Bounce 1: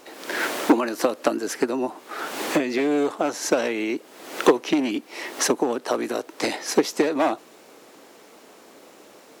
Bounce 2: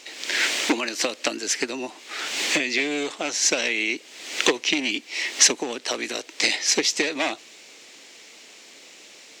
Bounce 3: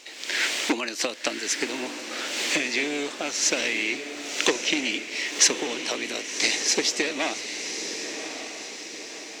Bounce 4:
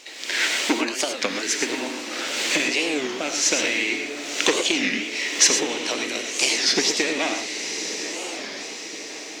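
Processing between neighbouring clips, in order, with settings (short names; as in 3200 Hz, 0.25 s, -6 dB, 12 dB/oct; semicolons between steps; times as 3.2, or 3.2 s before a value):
band shelf 3900 Hz +16 dB 2.4 oct; gain -6.5 dB
diffused feedback echo 1.117 s, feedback 53%, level -8 dB; gain -2.5 dB
non-linear reverb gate 0.14 s rising, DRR 5 dB; record warp 33 1/3 rpm, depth 250 cents; gain +2 dB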